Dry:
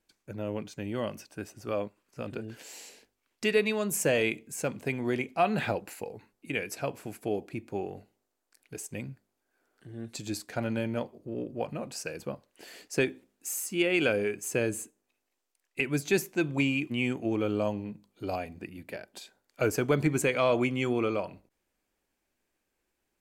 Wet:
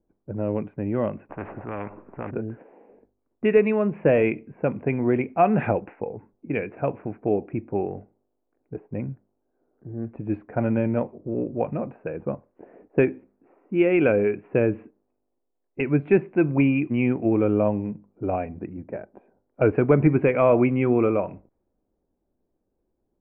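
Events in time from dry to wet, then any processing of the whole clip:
0:01.29–0:02.31: every bin compressed towards the loudest bin 4 to 1
whole clip: elliptic low-pass filter 2,500 Hz, stop band 60 dB; low-pass that shuts in the quiet parts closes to 620 Hz, open at −25.5 dBFS; tilt shelving filter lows +6.5 dB, about 1,400 Hz; level +3.5 dB

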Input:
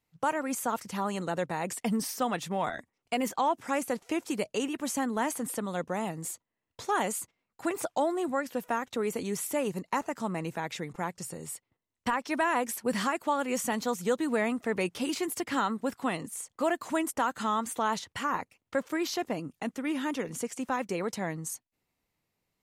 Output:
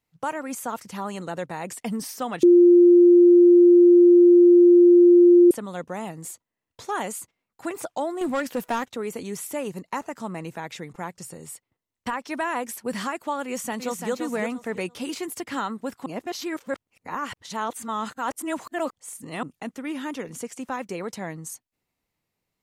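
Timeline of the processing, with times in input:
0:02.43–0:05.51: beep over 350 Hz −9.5 dBFS
0:08.21–0:08.86: leveller curve on the samples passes 2
0:13.45–0:14.12: delay throw 340 ms, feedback 25%, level −5.5 dB
0:16.06–0:19.43: reverse

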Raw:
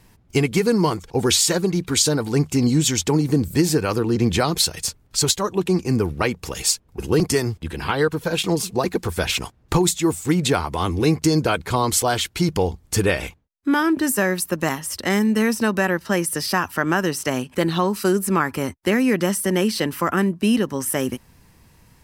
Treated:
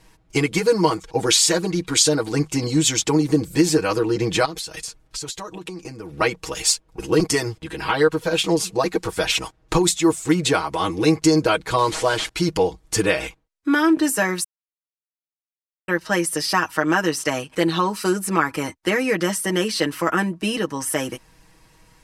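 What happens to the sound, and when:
0:04.45–0:06.13: downward compressor 10 to 1, threshold −28 dBFS
0:11.78–0:12.29: linear delta modulator 64 kbit/s, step −33 dBFS
0:14.44–0:15.88: silence
whole clip: low-pass filter 10,000 Hz 12 dB per octave; parametric band 150 Hz −8.5 dB 1.3 octaves; comb filter 6.3 ms, depth 80%

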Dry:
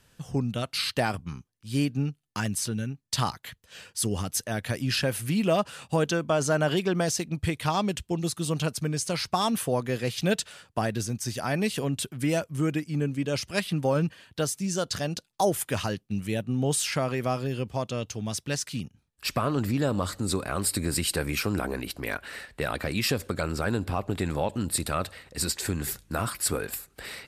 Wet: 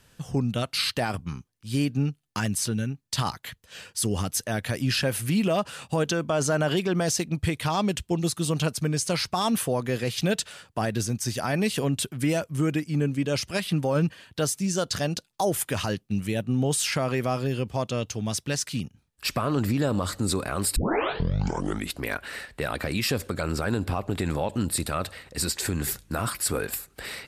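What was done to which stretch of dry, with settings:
0:20.76: tape start 1.23 s
whole clip: brickwall limiter −18.5 dBFS; level +3 dB

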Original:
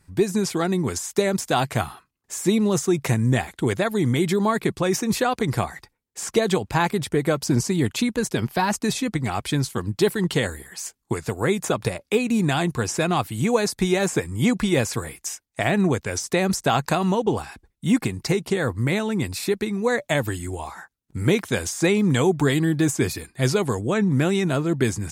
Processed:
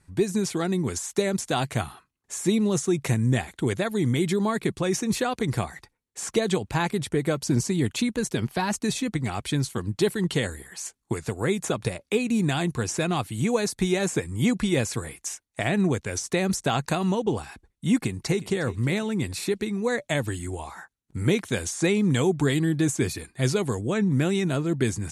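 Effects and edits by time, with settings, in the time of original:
0:18.00–0:18.61: delay throw 360 ms, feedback 30%, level −17.5 dB
whole clip: Butterworth low-pass 12,000 Hz 48 dB per octave; notch filter 5,000 Hz, Q 14; dynamic equaliser 960 Hz, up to −4 dB, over −33 dBFS, Q 0.72; level −2 dB

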